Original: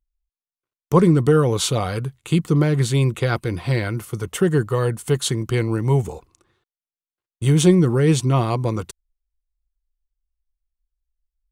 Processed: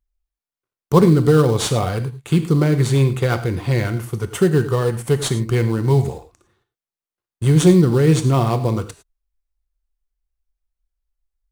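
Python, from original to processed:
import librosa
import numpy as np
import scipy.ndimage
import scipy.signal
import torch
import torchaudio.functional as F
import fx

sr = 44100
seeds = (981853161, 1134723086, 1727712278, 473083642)

p1 = fx.rev_gated(x, sr, seeds[0], gate_ms=130, shape='flat', drr_db=9.0)
p2 = fx.sample_hold(p1, sr, seeds[1], rate_hz=4400.0, jitter_pct=20)
p3 = p1 + F.gain(torch.from_numpy(p2), -8.0).numpy()
y = F.gain(torch.from_numpy(p3), -1.0).numpy()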